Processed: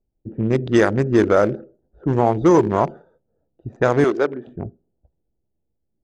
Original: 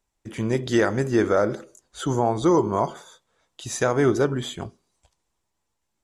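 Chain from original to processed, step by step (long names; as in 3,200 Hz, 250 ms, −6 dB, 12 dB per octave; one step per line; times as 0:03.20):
adaptive Wiener filter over 41 samples
0:04.04–0:04.47: high-pass filter 400 Hz 12 dB per octave
low-pass that shuts in the quiet parts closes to 670 Hz, open at −15.5 dBFS
level +5.5 dB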